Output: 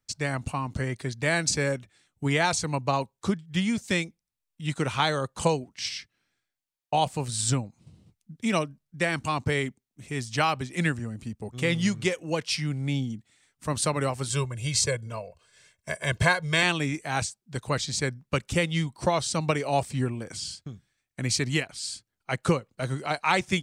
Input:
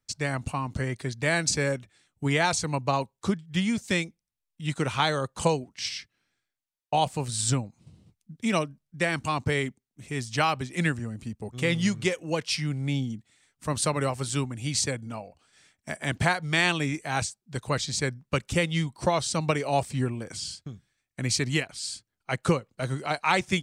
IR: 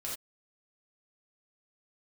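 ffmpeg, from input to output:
-filter_complex "[0:a]asettb=1/sr,asplit=3[a][b][c];[a]atrim=end=14.304[d];[b]atrim=start=14.3:end=16.63,asetpts=PTS-STARTPTS,afade=t=in:d=0.004:c=qsin,afade=t=out:st=2.326:d=0.004:c=qsin,aecho=1:1:1.9:0.81,atrim=end_sample=102753[e];[c]atrim=start=16.626[f];[d][e]acrossfade=d=0.004:c1=hsin:c2=qsin[g];[g][f]acrossfade=d=0.004:c1=qsin:c2=hsin"

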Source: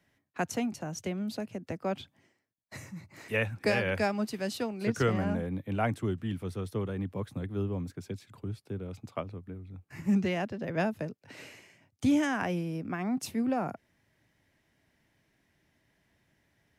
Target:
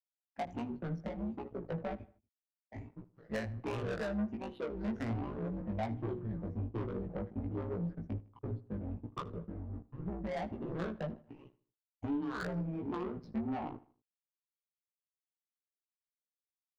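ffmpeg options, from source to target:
-filter_complex "[0:a]afftfilt=real='re*pow(10,23/40*sin(2*PI*(0.63*log(max(b,1)*sr/1024/100)/log(2)-(1.3)*(pts-256)/sr)))':imag='im*pow(10,23/40*sin(2*PI*(0.63*log(max(b,1)*sr/1024/100)/log(2)-(1.3)*(pts-256)/sr)))':win_size=1024:overlap=0.75,bandreject=f=60:t=h:w=6,bandreject=f=120:t=h:w=6,bandreject=f=180:t=h:w=6,bandreject=f=240:t=h:w=6,bandreject=f=300:t=h:w=6,bandreject=f=360:t=h:w=6,bandreject=f=420:t=h:w=6,bandreject=f=480:t=h:w=6,aresample=16000,acrusher=bits=6:mix=0:aa=0.000001,aresample=44100,afftdn=nr=15:nf=-42,adynamicequalizer=threshold=0.02:dfrequency=530:dqfactor=0.84:tfrequency=530:tqfactor=0.84:attack=5:release=100:ratio=0.375:range=1.5:mode=cutabove:tftype=bell,acompressor=threshold=-26dB:ratio=12,tremolo=f=140:d=0.788,adynamicsmooth=sensitivity=2:basefreq=610,asoftclip=type=tanh:threshold=-31.5dB,flanger=delay=16.5:depth=2.1:speed=1.3,asplit=2[a][b];[b]adelay=78,lowpass=f=4k:p=1,volume=-19dB,asplit=2[c][d];[d]adelay=78,lowpass=f=4k:p=1,volume=0.42,asplit=2[e][f];[f]adelay=78,lowpass=f=4k:p=1,volume=0.42[g];[a][c][e][g]amix=inputs=4:normalize=0,volume=4dB"

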